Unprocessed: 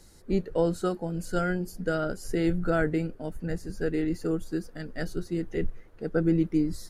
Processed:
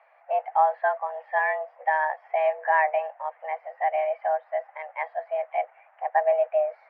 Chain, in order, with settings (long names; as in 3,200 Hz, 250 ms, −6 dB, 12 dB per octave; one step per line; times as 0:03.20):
single-sideband voice off tune +310 Hz 320–2,200 Hz
level +5.5 dB